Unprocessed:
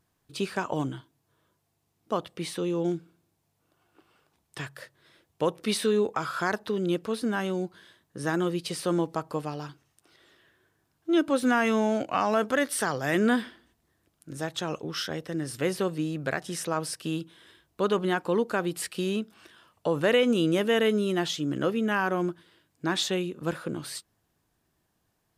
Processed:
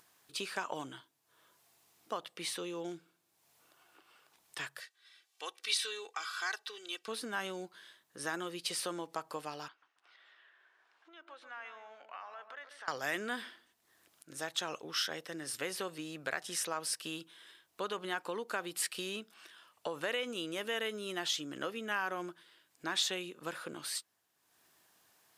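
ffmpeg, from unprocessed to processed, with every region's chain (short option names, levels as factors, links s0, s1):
-filter_complex "[0:a]asettb=1/sr,asplit=3[s0][s1][s2];[s0]atrim=end=4.804[s3];[s1]atrim=start=4.8:end=7.08,asetpts=PTS-STARTPTS,afade=t=in:d=0.004:c=qsin,afade=t=out:st=2.276:d=0.004:c=qsin,bandpass=f=4300:t=q:w=0.62,aecho=1:1:2.6:0.68,atrim=end_sample=100548[s4];[s2]atrim=start=7.076[s5];[s3][s4]acrossfade=d=0.004:c1=hsin:c2=qsin[s6];[s6][s5]acrossfade=d=0.004:c1=qsin:c2=hsin,asettb=1/sr,asplit=3[s7][s8][s9];[s7]atrim=end=9.684[s10];[s8]atrim=start=9.68:end=12.88,asetpts=PTS-STARTPTS,afade=t=in:d=0.004:c=qsin,afade=t=out:st=3.196:d=0.004:c=qsin,acompressor=threshold=0.0112:ratio=4:attack=3.2:release=140:knee=1:detection=peak,highpass=760,lowpass=2700,asplit=2[s11][s12];[s12]adelay=139,lowpass=f=1000:p=1,volume=0.473,asplit=2[s13][s14];[s14]adelay=139,lowpass=f=1000:p=1,volume=0.39,asplit=2[s15][s16];[s16]adelay=139,lowpass=f=1000:p=1,volume=0.39,asplit=2[s17][s18];[s18]adelay=139,lowpass=f=1000:p=1,volume=0.39,asplit=2[s19][s20];[s20]adelay=139,lowpass=f=1000:p=1,volume=0.39[s21];[s11][s13][s15][s17][s19][s21]amix=inputs=6:normalize=0,atrim=end_sample=141120[s22];[s9]atrim=start=12.876[s23];[s10][s22]acrossfade=d=0.004:c1=hsin:c2=qsin[s24];[s24][s23]acrossfade=d=0.004:c1=qsin:c2=hsin,acompressor=threshold=0.0501:ratio=6,highpass=f=1200:p=1,acompressor=mode=upward:threshold=0.00141:ratio=2.5"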